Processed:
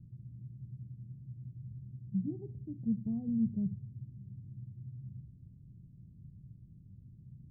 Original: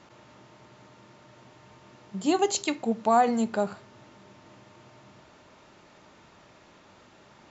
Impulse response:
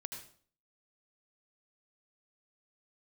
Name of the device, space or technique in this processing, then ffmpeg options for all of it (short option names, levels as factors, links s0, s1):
the neighbour's flat through the wall: -af "lowpass=f=150:w=0.5412,lowpass=f=150:w=1.3066,equalizer=f=130:t=o:w=0.61:g=5.5,volume=3.35"